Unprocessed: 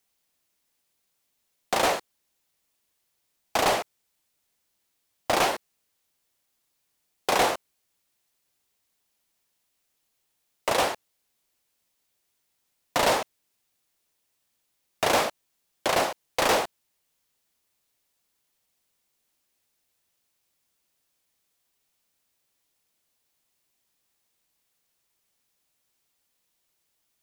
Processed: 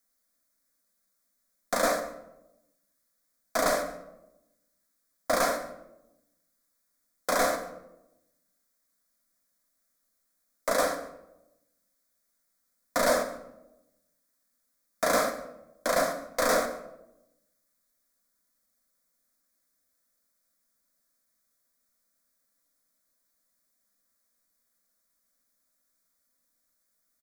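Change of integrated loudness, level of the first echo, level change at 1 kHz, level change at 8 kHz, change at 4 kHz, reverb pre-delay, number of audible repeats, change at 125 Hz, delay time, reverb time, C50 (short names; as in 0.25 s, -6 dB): -2.5 dB, -19.5 dB, -4.0 dB, -1.0 dB, -7.0 dB, 3 ms, 1, -5.5 dB, 0.143 s, 0.90 s, 10.0 dB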